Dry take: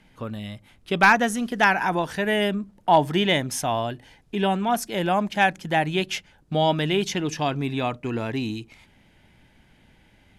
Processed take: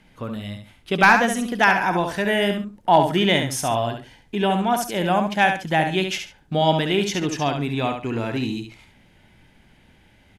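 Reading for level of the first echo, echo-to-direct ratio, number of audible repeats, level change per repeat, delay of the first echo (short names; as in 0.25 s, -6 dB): -6.5 dB, -6.5 dB, 2, -12.5 dB, 69 ms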